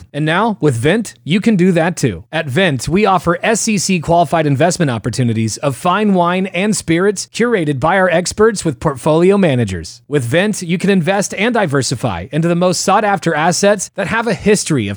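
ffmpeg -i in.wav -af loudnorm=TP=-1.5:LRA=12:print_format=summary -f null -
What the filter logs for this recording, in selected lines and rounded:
Input Integrated:    -14.1 LUFS
Input True Peak:      -1.2 dBTP
Input LRA:             0.6 LU
Input Threshold:     -24.2 LUFS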